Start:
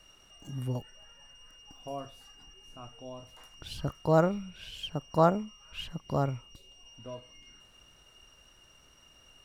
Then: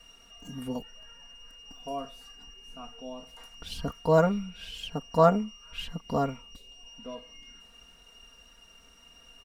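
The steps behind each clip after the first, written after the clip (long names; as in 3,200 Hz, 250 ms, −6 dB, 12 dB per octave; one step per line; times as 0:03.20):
comb filter 4.3 ms, depth 95%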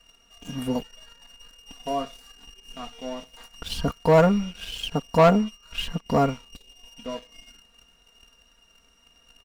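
leveller curve on the samples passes 2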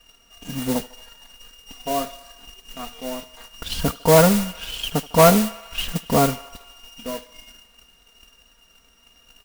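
feedback echo with a high-pass in the loop 76 ms, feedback 80%, high-pass 510 Hz, level −18 dB
noise that follows the level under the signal 10 dB
level +3 dB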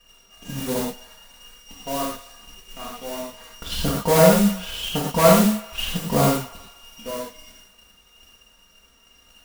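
in parallel at −7 dB: gain into a clipping stage and back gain 17 dB
on the sum: reverb whose tail is shaped and stops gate 140 ms flat, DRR −3 dB
level −7 dB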